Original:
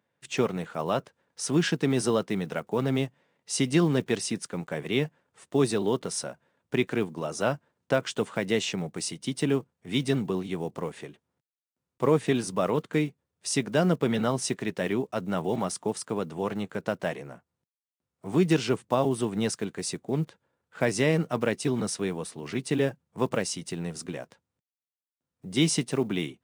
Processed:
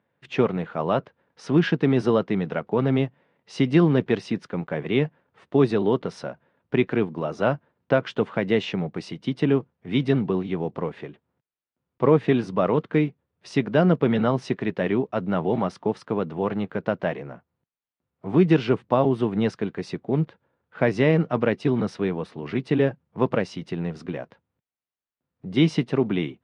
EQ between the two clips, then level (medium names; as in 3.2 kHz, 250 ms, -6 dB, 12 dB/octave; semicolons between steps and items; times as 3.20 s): distance through air 310 m; +5.5 dB